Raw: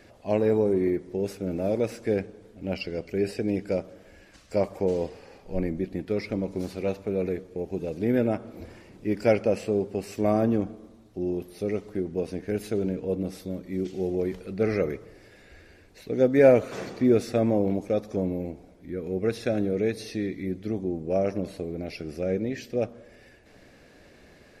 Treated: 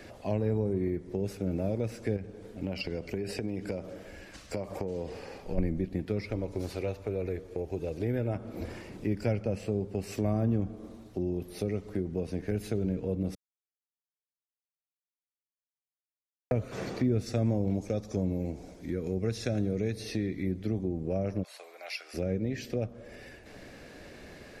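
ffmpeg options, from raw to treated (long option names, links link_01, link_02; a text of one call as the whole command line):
ffmpeg -i in.wav -filter_complex "[0:a]asettb=1/sr,asplit=3[link_01][link_02][link_03];[link_01]atrim=end=2.164[link_04];[link_02]atrim=start=2.16:end=5.58,asetpts=PTS-STARTPTS,afade=type=in:duration=0.004:curve=qsin,afade=type=out:start_time=3.416:duration=0.004:curve=qsin,acompressor=threshold=-30dB:ratio=6:attack=3.2:release=140:knee=1:detection=peak[link_05];[link_03]atrim=start=5.576[link_06];[link_04][link_05]acrossfade=duration=0.004:curve1=hsin:curve2=qsin[link_07];[link_07][link_06]acrossfade=duration=0.004:curve1=qsin:curve2=hsin,asettb=1/sr,asplit=3[link_08][link_09][link_10];[link_08]atrim=end=6.274[link_11];[link_09]atrim=start=6.27:end=8.35,asetpts=PTS-STARTPTS,afade=type=in:duration=0.004:curve=qsin,afade=type=out:start_time=2.076:duration=0.004:curve=qsin,equalizer=frequency=200:width_type=o:width=0.71:gain=-10[link_12];[link_10]atrim=start=8.346[link_13];[link_11][link_12]acrossfade=duration=0.004:curve1=hsin:curve2=qsin[link_14];[link_14][link_13]acrossfade=duration=0.004:curve1=qsin:curve2=hsin,asettb=1/sr,asplit=3[link_15][link_16][link_17];[link_15]atrim=end=17.264[link_18];[link_16]atrim=start=17.26:end=19.93,asetpts=PTS-STARTPTS,afade=type=in:duration=0.004:curve=qsin,afade=type=out:start_time=2.666:duration=0.004:curve=qsin,equalizer=frequency=6300:width=1.1:gain=9.5[link_19];[link_17]atrim=start=19.926[link_20];[link_18][link_19]acrossfade=duration=0.004:curve1=hsin:curve2=qsin[link_21];[link_21][link_20]acrossfade=duration=0.004:curve1=qsin:curve2=hsin,asplit=3[link_22][link_23][link_24];[link_22]afade=type=out:start_time=21.42:duration=0.02[link_25];[link_23]highpass=frequency=840:width=0.5412,highpass=frequency=840:width=1.3066,afade=type=in:start_time=21.42:duration=0.02,afade=type=out:start_time=22.13:duration=0.02[link_26];[link_24]afade=type=in:start_time=22.13:duration=0.02[link_27];[link_25][link_26][link_27]amix=inputs=3:normalize=0,asplit=3[link_28][link_29][link_30];[link_28]atrim=end=13.35,asetpts=PTS-STARTPTS,afade=type=out:start_time=13.346:duration=0.004:curve=hsin[link_31];[link_29]atrim=start=13.35:end=16.51,asetpts=PTS-STARTPTS,volume=0[link_32];[link_30]atrim=start=16.51,asetpts=PTS-STARTPTS,afade=type=in:duration=0.004:curve=hsin[link_33];[link_31][link_32][link_33]concat=n=3:v=0:a=1,acrossover=split=150[link_34][link_35];[link_35]acompressor=threshold=-38dB:ratio=4[link_36];[link_34][link_36]amix=inputs=2:normalize=0,volume=5dB" out.wav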